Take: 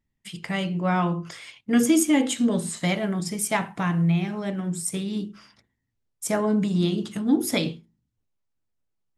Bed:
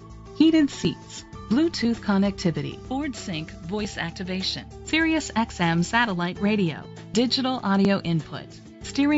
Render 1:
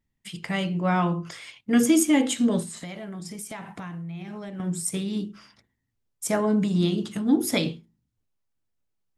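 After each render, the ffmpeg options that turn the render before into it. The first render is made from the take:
-filter_complex "[0:a]asettb=1/sr,asplit=3[a][b][c];[a]atrim=end=2.624[d];[b]atrim=start=2.62:end=4.6,asetpts=PTS-STARTPTS,afade=t=in:d=0.004:c=qsin,afade=t=out:st=1.976:d=0.004:c=qsin,acompressor=threshold=-33dB:ratio=10:attack=3.2:release=140:knee=1:detection=peak[e];[c]atrim=start=4.596[f];[d][e]acrossfade=d=0.004:c1=hsin:c2=qsin[g];[g][f]acrossfade=d=0.004:c1=qsin:c2=hsin"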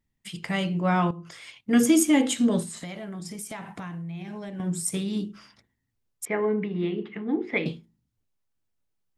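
-filter_complex "[0:a]asettb=1/sr,asplit=3[a][b][c];[a]atrim=end=3.934[d];[b]atrim=start=3.93:end=4.66,asetpts=PTS-STARTPTS,afade=t=in:d=0.004:c=qsin,afade=t=out:st=0.726:d=0.004:c=qsin,asuperstop=centerf=1300:order=4:qfactor=7.8[e];[c]atrim=start=4.656[f];[d][e]acrossfade=d=0.004:c1=hsin:c2=qsin[g];[g][f]acrossfade=d=0.004:c1=qsin:c2=hsin,asettb=1/sr,asplit=3[h][i][j];[h]atrim=end=6.254[k];[i]atrim=start=6.25:end=7.66,asetpts=PTS-STARTPTS,afade=t=in:d=0.004:c=qsin,afade=t=out:st=1.406:d=0.004:c=qsin,highpass=260,equalizer=f=270:t=q:w=4:g=-7,equalizer=f=420:t=q:w=4:g=5,equalizer=f=610:t=q:w=4:g=-9,equalizer=f=950:t=q:w=4:g=-4,equalizer=f=1.4k:t=q:w=4:g=-7,equalizer=f=2.1k:t=q:w=4:g=9,lowpass=f=2.4k:w=0.5412,lowpass=f=2.4k:w=1.3066[l];[j]atrim=start=7.656[m];[k][l]acrossfade=d=0.004:c1=hsin:c2=qsin[n];[n][m]acrossfade=d=0.004:c1=qsin:c2=hsin,asplit=2[o][p];[o]atrim=end=1.11,asetpts=PTS-STARTPTS,afade=t=out:st=1.106:d=0.004:c=hsin:silence=0.211349[q];[p]atrim=start=1.11,asetpts=PTS-STARTPTS,afade=t=in:d=0.46:silence=0.211349[r];[q][r]concat=n=2:v=0:a=1"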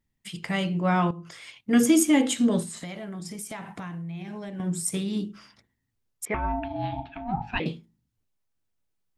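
-filter_complex "[0:a]asettb=1/sr,asplit=3[a][b][c];[a]atrim=end=6.344[d];[b]atrim=start=6.34:end=7.6,asetpts=PTS-STARTPTS,afade=t=in:d=0.004:c=qsin,afade=t=out:st=1.256:d=0.004:c=qsin,aeval=exprs='val(0)*sin(2*PI*480*n/s)':c=same[e];[c]atrim=start=7.596[f];[d][e]acrossfade=d=0.004:c1=hsin:c2=qsin[g];[g][f]acrossfade=d=0.004:c1=qsin:c2=hsin"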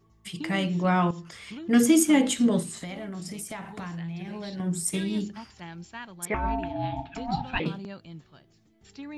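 -filter_complex "[1:a]volume=-19.5dB[a];[0:a][a]amix=inputs=2:normalize=0"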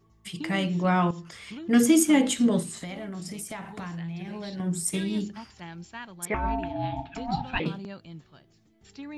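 -af anull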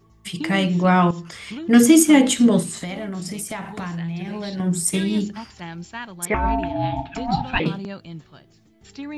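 -af "volume=7dB,alimiter=limit=-3dB:level=0:latency=1"

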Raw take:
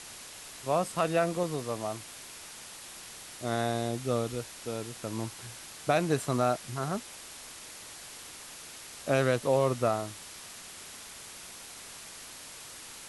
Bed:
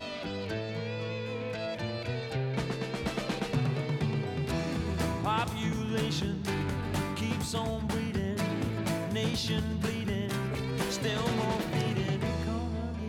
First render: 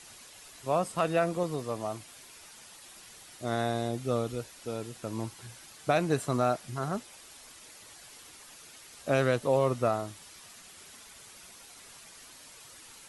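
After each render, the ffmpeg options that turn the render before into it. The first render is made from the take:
-af "afftdn=nr=8:nf=-47"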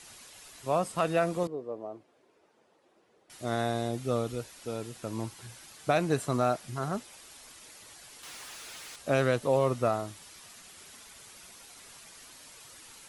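-filter_complex "[0:a]asettb=1/sr,asplit=3[a][b][c];[a]atrim=end=1.474[d];[b]atrim=start=1.47:end=3.3,asetpts=PTS-STARTPTS,afade=t=in:d=0.004:c=qsin,afade=t=out:st=1.826:d=0.004:c=qsin,bandpass=f=420:t=q:w=1.7[e];[c]atrim=start=3.296[f];[d][e]acrossfade=d=0.004:c1=hsin:c2=qsin[g];[g][f]acrossfade=d=0.004:c1=qsin:c2=hsin,asettb=1/sr,asplit=3[h][i][j];[h]atrim=end=8.234[k];[i]atrim=start=8.23:end=8.96,asetpts=PTS-STARTPTS,afade=t=in:d=0.004:c=qsin,afade=t=out:st=0.726:d=0.004:c=qsin,asplit=2[l][m];[m]highpass=f=720:p=1,volume=30dB,asoftclip=type=tanh:threshold=-37dB[n];[l][n]amix=inputs=2:normalize=0,lowpass=f=5.5k:p=1,volume=-6dB[o];[j]atrim=start=8.956[p];[k][o]acrossfade=d=0.004:c1=hsin:c2=qsin[q];[q][p]acrossfade=d=0.004:c1=qsin:c2=hsin"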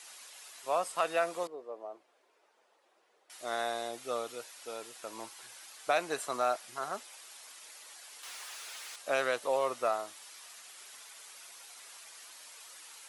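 -af "highpass=630"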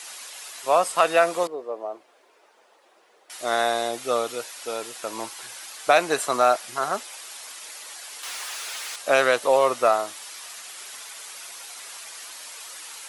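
-af "volume=11.5dB"

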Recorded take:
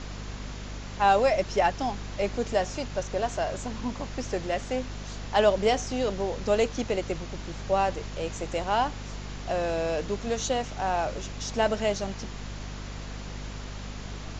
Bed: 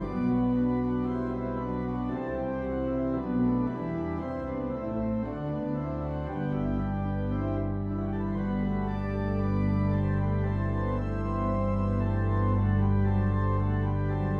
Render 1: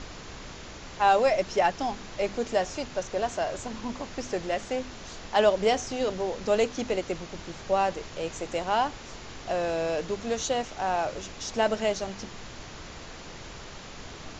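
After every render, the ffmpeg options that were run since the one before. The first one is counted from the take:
-af "bandreject=f=50:t=h:w=6,bandreject=f=100:t=h:w=6,bandreject=f=150:t=h:w=6,bandreject=f=200:t=h:w=6,bandreject=f=250:t=h:w=6"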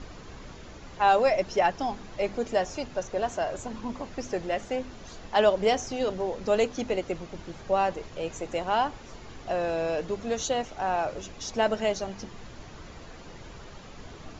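-af "afftdn=nr=8:nf=-43"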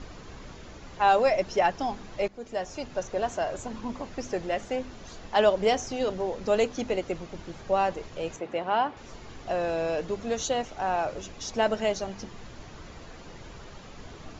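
-filter_complex "[0:a]asettb=1/sr,asplit=3[a][b][c];[a]atrim=end=8.364[d];[b]atrim=start=8.36:end=8.97,asetpts=PTS-STARTPTS,afade=t=in:d=0.004:c=qsin,afade=t=out:st=0.606:d=0.004:c=qsin,highpass=150,lowpass=3.2k[e];[c]atrim=start=8.966[f];[d][e]acrossfade=d=0.004:c1=hsin:c2=qsin[g];[g][f]acrossfade=d=0.004:c1=qsin:c2=hsin,asplit=2[h][i];[h]atrim=end=2.28,asetpts=PTS-STARTPTS,afade=t=out:st=2.276:d=0.004:c=hsin:silence=0.158489[j];[i]atrim=start=2.28,asetpts=PTS-STARTPTS,afade=t=in:d=0.7:silence=0.158489[k];[j][k]concat=n=2:v=0:a=1"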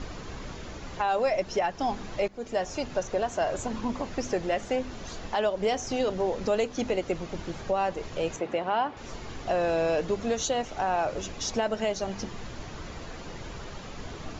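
-filter_complex "[0:a]asplit=2[a][b];[b]acompressor=threshold=-32dB:ratio=6,volume=-2.5dB[c];[a][c]amix=inputs=2:normalize=0,alimiter=limit=-17dB:level=0:latency=1:release=250"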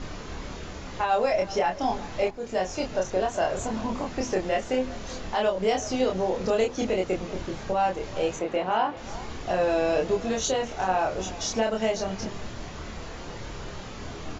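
-filter_complex "[0:a]asplit=2[a][b];[b]adelay=27,volume=-2dB[c];[a][c]amix=inputs=2:normalize=0,asplit=2[d][e];[e]adelay=379,volume=-17dB,highshelf=f=4k:g=-8.53[f];[d][f]amix=inputs=2:normalize=0"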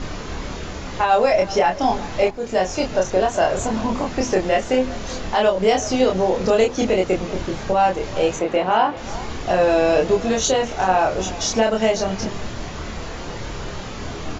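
-af "volume=7.5dB"

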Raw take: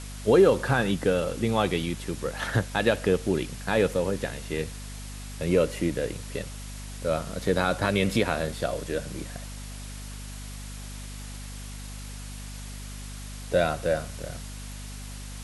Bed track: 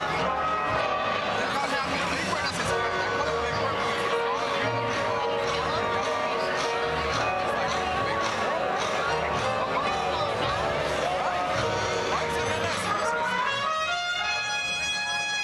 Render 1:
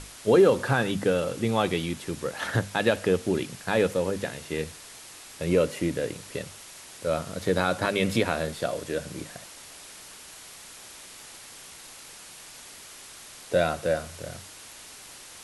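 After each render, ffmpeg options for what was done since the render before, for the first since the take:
-af "bandreject=f=50:t=h:w=6,bandreject=f=100:t=h:w=6,bandreject=f=150:t=h:w=6,bandreject=f=200:t=h:w=6,bandreject=f=250:t=h:w=6"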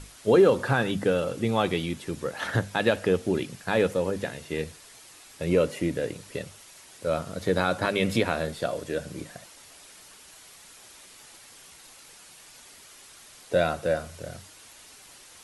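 -af "afftdn=nr=6:nf=-46"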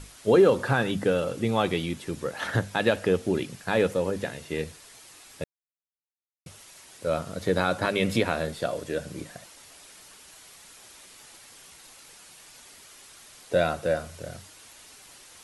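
-filter_complex "[0:a]asplit=3[a][b][c];[a]atrim=end=5.44,asetpts=PTS-STARTPTS,afade=t=out:st=5.436:d=0.004:c=hsin[d];[b]atrim=start=5.44:end=6.46,asetpts=PTS-STARTPTS,volume=0[e];[c]atrim=start=6.46,asetpts=PTS-STARTPTS,afade=t=in:d=0.004:c=hsin[f];[d][e][f]concat=n=3:v=0:a=1"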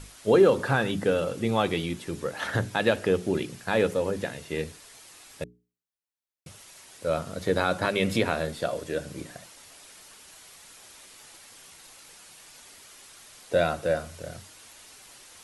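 -af "bandreject=f=60:t=h:w=6,bandreject=f=120:t=h:w=6,bandreject=f=180:t=h:w=6,bandreject=f=240:t=h:w=6,bandreject=f=300:t=h:w=6,bandreject=f=360:t=h:w=6,bandreject=f=420:t=h:w=6"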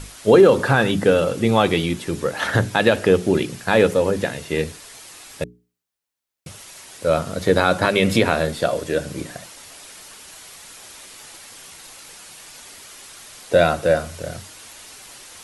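-af "volume=8.5dB,alimiter=limit=-3dB:level=0:latency=1"

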